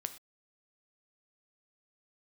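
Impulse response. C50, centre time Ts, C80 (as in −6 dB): 13.0 dB, 6 ms, 16.5 dB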